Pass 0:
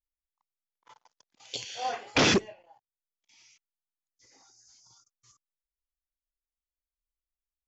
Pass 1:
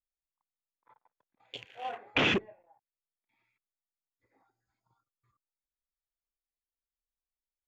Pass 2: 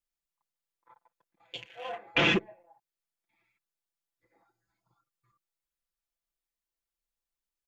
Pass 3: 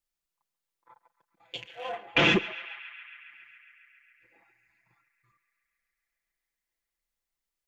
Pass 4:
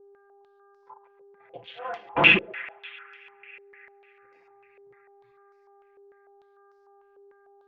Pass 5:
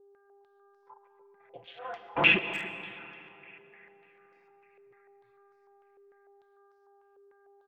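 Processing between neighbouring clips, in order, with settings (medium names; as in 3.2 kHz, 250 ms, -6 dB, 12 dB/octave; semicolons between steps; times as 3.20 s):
local Wiener filter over 15 samples; resonant high shelf 3.8 kHz -9 dB, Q 3; trim -5.5 dB
comb 5.9 ms, depth 81%
band-passed feedback delay 137 ms, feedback 83%, band-pass 1.9 kHz, level -14.5 dB; trim +2.5 dB
mains buzz 400 Hz, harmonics 4, -59 dBFS -8 dB/octave; step-sequenced low-pass 6.7 Hz 500–5200 Hz; trim -1.5 dB
speakerphone echo 290 ms, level -16 dB; reverberation RT60 3.2 s, pre-delay 80 ms, DRR 12 dB; trim -5.5 dB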